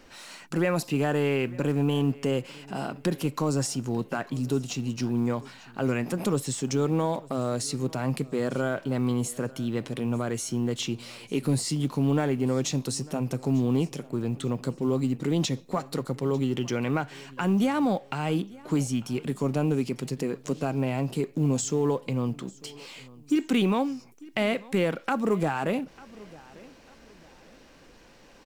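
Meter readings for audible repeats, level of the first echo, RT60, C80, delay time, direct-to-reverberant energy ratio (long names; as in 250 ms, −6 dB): 2, −22.0 dB, no reverb audible, no reverb audible, 897 ms, no reverb audible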